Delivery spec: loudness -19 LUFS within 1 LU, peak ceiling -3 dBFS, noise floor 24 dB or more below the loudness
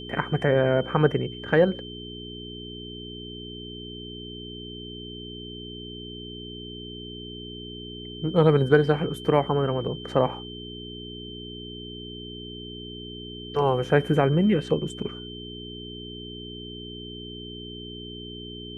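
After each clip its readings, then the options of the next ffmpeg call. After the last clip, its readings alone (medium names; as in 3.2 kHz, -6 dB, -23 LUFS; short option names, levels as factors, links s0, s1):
hum 60 Hz; highest harmonic 420 Hz; hum level -37 dBFS; steady tone 3.1 kHz; tone level -40 dBFS; loudness -28.0 LUFS; peak level -5.0 dBFS; loudness target -19.0 LUFS
-> -af "bandreject=f=60:t=h:w=4,bandreject=f=120:t=h:w=4,bandreject=f=180:t=h:w=4,bandreject=f=240:t=h:w=4,bandreject=f=300:t=h:w=4,bandreject=f=360:t=h:w=4,bandreject=f=420:t=h:w=4"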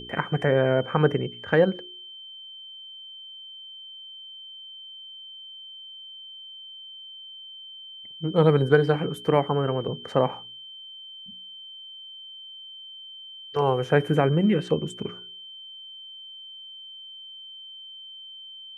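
hum not found; steady tone 3.1 kHz; tone level -40 dBFS
-> -af "bandreject=f=3100:w=30"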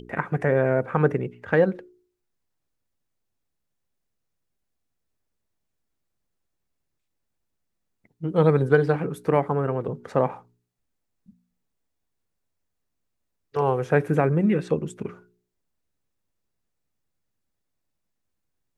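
steady tone not found; loudness -23.5 LUFS; peak level -4.5 dBFS; loudness target -19.0 LUFS
-> -af "volume=1.68,alimiter=limit=0.708:level=0:latency=1"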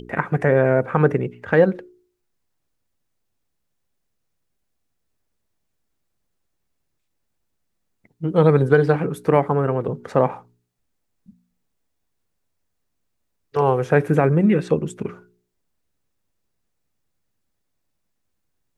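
loudness -19.5 LUFS; peak level -3.0 dBFS; noise floor -74 dBFS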